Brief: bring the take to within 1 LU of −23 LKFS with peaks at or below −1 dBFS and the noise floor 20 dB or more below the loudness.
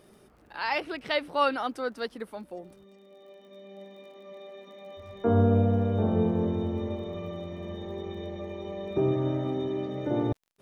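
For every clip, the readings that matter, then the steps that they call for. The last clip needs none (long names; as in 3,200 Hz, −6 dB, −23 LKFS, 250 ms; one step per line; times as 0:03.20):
crackle rate 36 per second; integrated loudness −29.0 LKFS; sample peak −12.0 dBFS; target loudness −23.0 LKFS
→ click removal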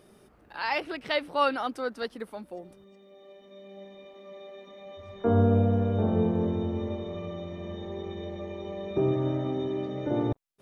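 crackle rate 0 per second; integrated loudness −29.0 LKFS; sample peak −12.0 dBFS; target loudness −23.0 LKFS
→ level +6 dB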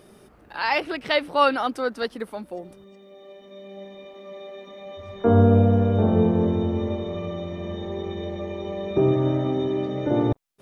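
integrated loudness −23.0 LKFS; sample peak −6.0 dBFS; background noise floor −52 dBFS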